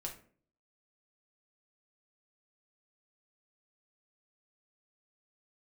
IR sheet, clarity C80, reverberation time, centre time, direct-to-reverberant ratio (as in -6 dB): 15.0 dB, 0.50 s, 20 ms, 0.0 dB